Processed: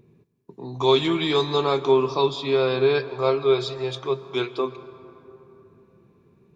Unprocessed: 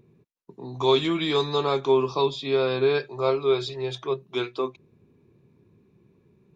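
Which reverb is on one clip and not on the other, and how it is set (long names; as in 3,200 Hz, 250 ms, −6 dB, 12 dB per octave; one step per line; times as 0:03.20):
dense smooth reverb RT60 3.4 s, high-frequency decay 0.45×, pre-delay 105 ms, DRR 14.5 dB
level +2 dB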